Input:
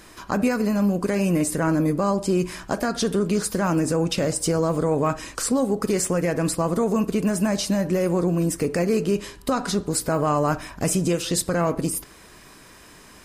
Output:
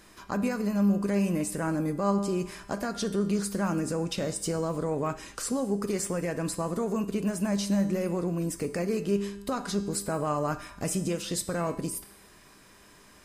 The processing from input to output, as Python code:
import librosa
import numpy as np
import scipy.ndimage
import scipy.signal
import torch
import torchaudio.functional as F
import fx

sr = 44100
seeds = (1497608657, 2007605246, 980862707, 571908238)

y = fx.comb_fb(x, sr, f0_hz=200.0, decay_s=0.94, harmonics='all', damping=0.0, mix_pct=70)
y = y * librosa.db_to_amplitude(2.0)